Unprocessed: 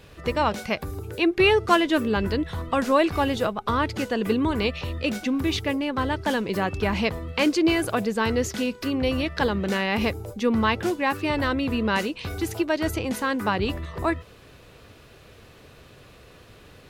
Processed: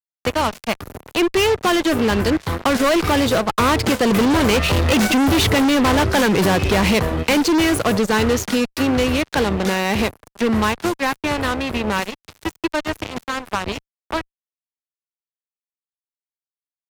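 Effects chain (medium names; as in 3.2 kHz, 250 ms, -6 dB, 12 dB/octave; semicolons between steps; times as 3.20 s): Doppler pass-by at 5.38 s, 9 m/s, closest 6.3 m; fuzz box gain 38 dB, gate -45 dBFS; three bands compressed up and down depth 40%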